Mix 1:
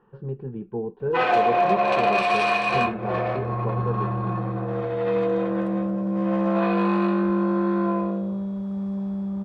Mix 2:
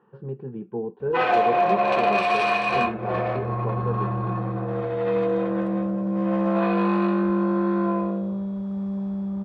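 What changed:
speech: add high-pass 130 Hz; master: add treble shelf 5.2 kHz -4.5 dB

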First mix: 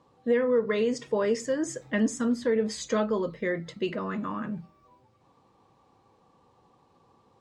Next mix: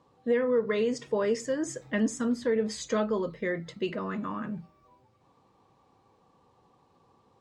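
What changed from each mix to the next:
reverb: off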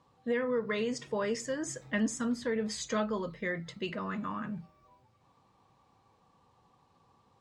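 speech: add peaking EQ 390 Hz -7 dB 1.5 oct

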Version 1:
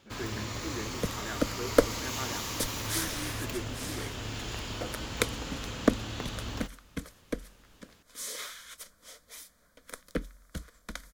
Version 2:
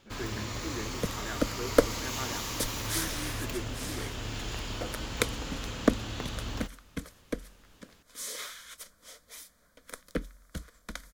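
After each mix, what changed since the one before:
first sound: remove high-pass 46 Hz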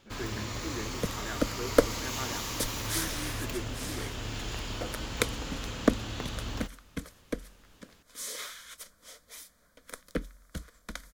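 no change

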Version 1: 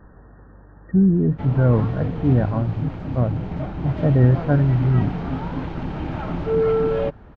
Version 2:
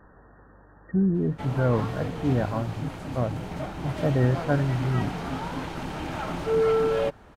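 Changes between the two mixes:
background: remove distance through air 200 m; master: add bass shelf 330 Hz -9.5 dB

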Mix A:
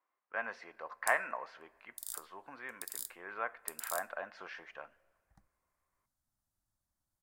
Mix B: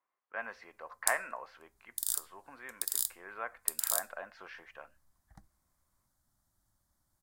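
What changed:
background +10.0 dB; reverb: off

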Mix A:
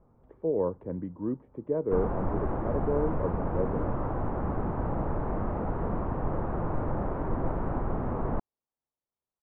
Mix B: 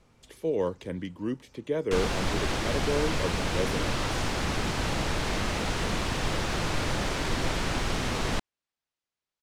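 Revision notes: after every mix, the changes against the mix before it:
master: remove low-pass 1.1 kHz 24 dB/octave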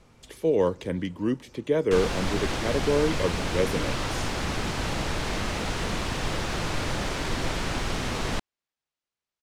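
speech +4.5 dB; reverb: on, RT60 2.0 s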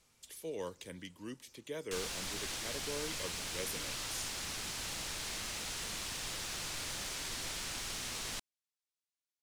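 master: add pre-emphasis filter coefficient 0.9

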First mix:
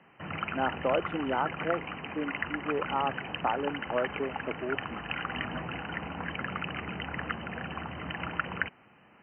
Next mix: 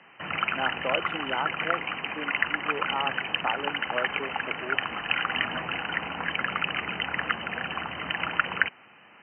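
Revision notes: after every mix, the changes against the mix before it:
background +5.5 dB; master: add tilt EQ +3 dB/octave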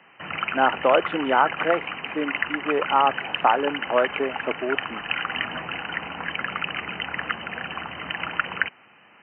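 speech +11.5 dB

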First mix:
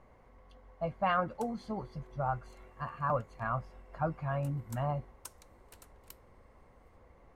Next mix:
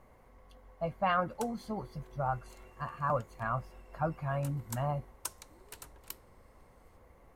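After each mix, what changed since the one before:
speech: remove distance through air 64 m; background +8.5 dB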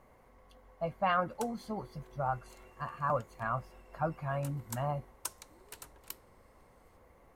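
master: add bass shelf 120 Hz -5 dB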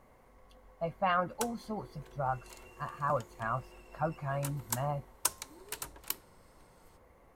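background +8.5 dB

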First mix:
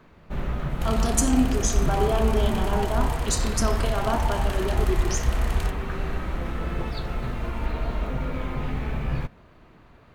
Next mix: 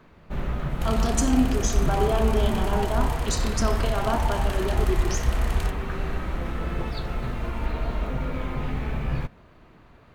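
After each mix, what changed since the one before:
speech: add low-pass 6.5 kHz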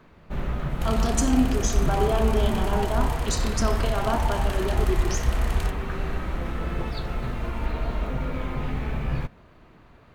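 no change

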